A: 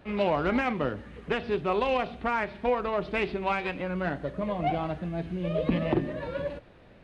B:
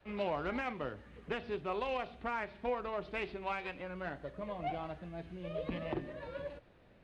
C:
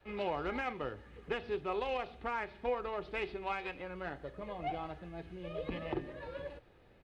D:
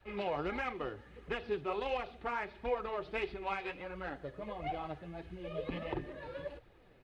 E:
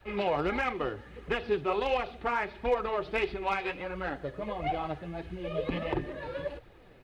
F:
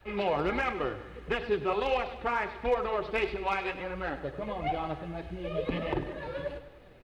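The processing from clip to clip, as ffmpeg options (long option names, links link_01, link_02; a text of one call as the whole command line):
ffmpeg -i in.wav -af "adynamicequalizer=threshold=0.00794:dfrequency=200:dqfactor=0.79:tfrequency=200:tqfactor=0.79:attack=5:release=100:ratio=0.375:range=3:mode=cutabove:tftype=bell,volume=-9dB" out.wav
ffmpeg -i in.wav -af "aecho=1:1:2.4:0.32" out.wav
ffmpeg -i in.wav -af "flanger=delay=0.4:depth=8:regen=37:speed=1.5:shape=triangular,volume=4dB" out.wav
ffmpeg -i in.wav -af "asoftclip=type=hard:threshold=-25.5dB,volume=7dB" out.wav
ffmpeg -i in.wav -af "aecho=1:1:100|200|300|400|500:0.224|0.119|0.0629|0.0333|0.0177" out.wav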